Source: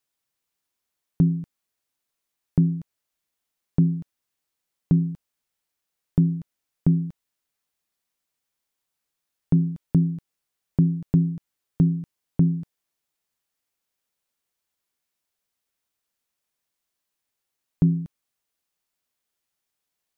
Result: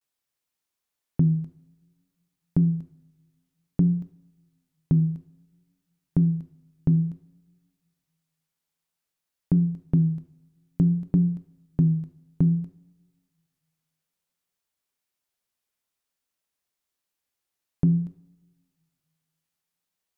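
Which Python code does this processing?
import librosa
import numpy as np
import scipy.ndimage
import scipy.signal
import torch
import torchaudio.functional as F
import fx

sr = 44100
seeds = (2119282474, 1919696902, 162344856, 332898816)

y = fx.rev_double_slope(x, sr, seeds[0], early_s=0.72, late_s=2.2, knee_db=-23, drr_db=11.0)
y = fx.vibrato(y, sr, rate_hz=0.56, depth_cents=74.0)
y = y * librosa.db_to_amplitude(-2.5)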